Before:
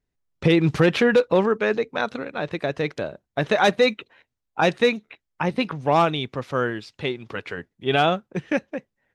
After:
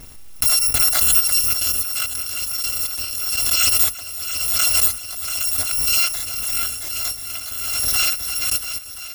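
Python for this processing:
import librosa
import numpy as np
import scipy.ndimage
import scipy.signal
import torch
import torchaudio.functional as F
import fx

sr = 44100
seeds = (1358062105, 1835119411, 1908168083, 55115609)

y = fx.bit_reversed(x, sr, seeds[0], block=256)
y = fx.echo_heads(y, sr, ms=342, heads='all three', feedback_pct=61, wet_db=-19.5)
y = fx.pre_swell(y, sr, db_per_s=27.0)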